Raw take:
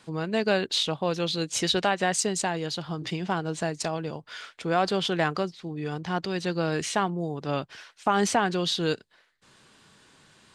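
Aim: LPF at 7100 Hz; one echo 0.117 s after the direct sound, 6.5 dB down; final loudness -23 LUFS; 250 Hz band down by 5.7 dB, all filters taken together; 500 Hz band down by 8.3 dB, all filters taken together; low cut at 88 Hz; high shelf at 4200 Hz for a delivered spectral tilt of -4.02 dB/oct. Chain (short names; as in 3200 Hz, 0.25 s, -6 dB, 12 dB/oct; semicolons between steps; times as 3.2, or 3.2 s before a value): HPF 88 Hz; LPF 7100 Hz; bell 250 Hz -6 dB; bell 500 Hz -9 dB; high shelf 4200 Hz -8 dB; echo 0.117 s -6.5 dB; gain +8.5 dB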